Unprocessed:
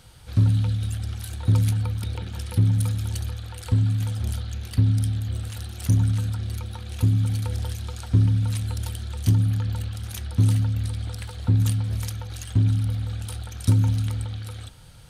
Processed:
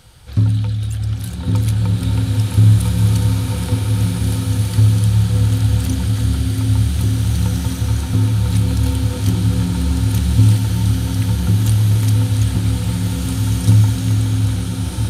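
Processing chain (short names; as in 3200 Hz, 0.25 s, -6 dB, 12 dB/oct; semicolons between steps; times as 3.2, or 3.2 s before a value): bloom reverb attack 1.85 s, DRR -5 dB; gain +4 dB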